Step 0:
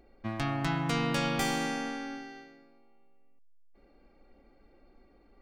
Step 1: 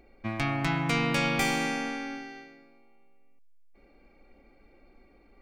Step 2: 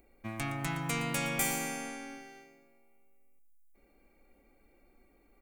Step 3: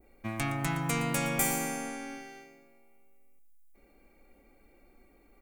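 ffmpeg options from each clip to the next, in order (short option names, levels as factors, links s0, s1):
-af "equalizer=f=2300:t=o:w=0.22:g=10.5,volume=1.26"
-af "aexciter=amount=6:drive=4.8:freq=6800,aecho=1:1:117:0.224,volume=0.447"
-af "adynamicequalizer=threshold=0.00355:dfrequency=3300:dqfactor=0.76:tfrequency=3300:tqfactor=0.76:attack=5:release=100:ratio=0.375:range=3:mode=cutabove:tftype=bell,volume=1.58"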